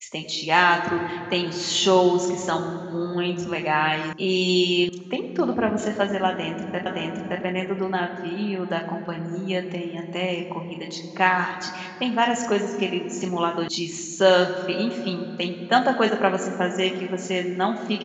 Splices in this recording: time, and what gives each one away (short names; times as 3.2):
4.13 sound cut off
4.89 sound cut off
6.86 repeat of the last 0.57 s
13.68 sound cut off